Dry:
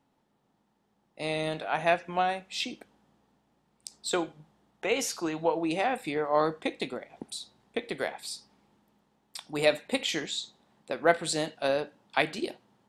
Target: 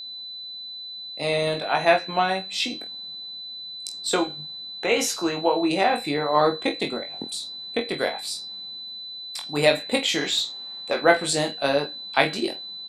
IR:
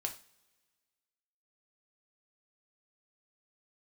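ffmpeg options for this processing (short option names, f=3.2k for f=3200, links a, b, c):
-filter_complex "[0:a]asettb=1/sr,asplit=3[a][b][c];[a]atrim=end=10.214[d];[b]atrim=start=10.21:end=11.02,asetpts=PTS-STARTPTS,afade=t=in:d=0.004:c=qsin,afade=t=out:st=0.806:d=0.004:c=qsin,asplit=2[e][f];[f]highpass=f=720:p=1,volume=12dB,asoftclip=type=tanh:threshold=-17.5dB[g];[e][g]amix=inputs=2:normalize=0,lowpass=f=4.4k:p=1,volume=-6dB[h];[c]atrim=start=11.016[i];[d][h]acrossfade=d=0.004:c1=hsin:c2=qsin[j];[j][i]acrossfade=d=0.004:c1=qsin:c2=hsin,aecho=1:1:21|47:0.631|0.237,aeval=exprs='val(0)+0.0112*sin(2*PI*4000*n/s)':c=same,volume=5dB"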